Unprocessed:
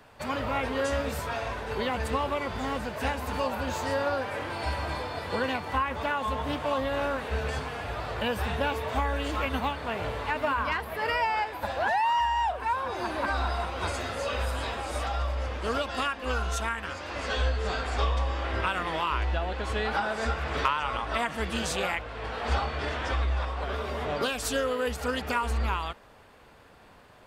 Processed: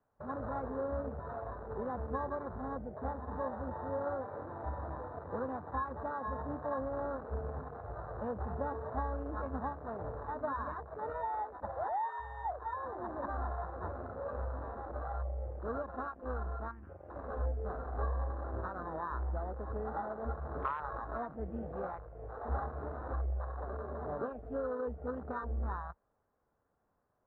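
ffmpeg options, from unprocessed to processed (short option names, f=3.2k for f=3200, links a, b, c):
-filter_complex "[0:a]asettb=1/sr,asplit=3[a][b][c];[a]atrim=end=2.204[d];[b]atrim=start=2.2:end=3.19,asetpts=PTS-STARTPTS,afade=t=in:d=0.004:c=qsin,afade=t=out:st=0.986:d=0.004:c=qsin,asuperstop=centerf=2900:order=20:qfactor=3.5[e];[c]atrim=start=3.186[f];[d][e]acrossfade=d=0.004:c1=hsin:c2=qsin[g];[g][f]acrossfade=d=0.004:c1=qsin:c2=hsin,asettb=1/sr,asplit=3[h][i][j];[h]atrim=end=17.884[k];[i]atrim=start=17.88:end=20.6,asetpts=PTS-STARTPTS,afade=t=in:d=0.004:c=qsin,afade=t=out:st=2.716:d=0.004:c=qsin,equalizer=f=13k:t=o:w=2.3:g=-12.5[l];[j]atrim=start=20.596[m];[k][l]acrossfade=d=0.004:c1=hsin:c2=qsin[n];[n][m]acrossfade=d=0.004:c1=qsin:c2=hsin,lowpass=f=1.4k:w=0.5412,lowpass=f=1.4k:w=1.3066,afwtdn=0.0282,bandreject=f=940:w=23,volume=-7.5dB"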